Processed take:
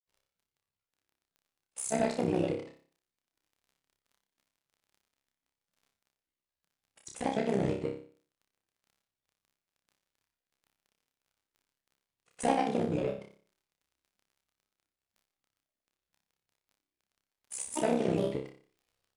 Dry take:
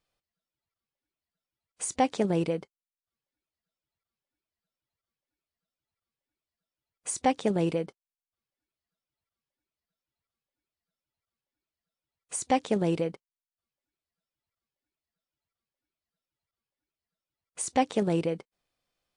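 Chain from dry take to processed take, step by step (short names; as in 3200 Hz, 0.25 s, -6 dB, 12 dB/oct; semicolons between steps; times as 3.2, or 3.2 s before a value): crackle 16/s -50 dBFS; grains, pitch spread up and down by 3 st; in parallel at -4.5 dB: soft clip -29 dBFS, distortion -7 dB; on the sum: AM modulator 64 Hz, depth 70%; flutter echo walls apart 5.1 m, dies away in 0.44 s; on a send at -19 dB: reverb RT60 0.50 s, pre-delay 5 ms; on the sum: gain -3.5 dB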